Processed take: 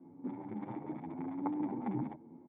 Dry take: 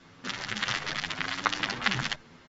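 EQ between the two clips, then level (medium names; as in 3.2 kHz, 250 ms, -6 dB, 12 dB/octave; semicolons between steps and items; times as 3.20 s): cascade formant filter u; high-pass 130 Hz 12 dB/octave; +10.0 dB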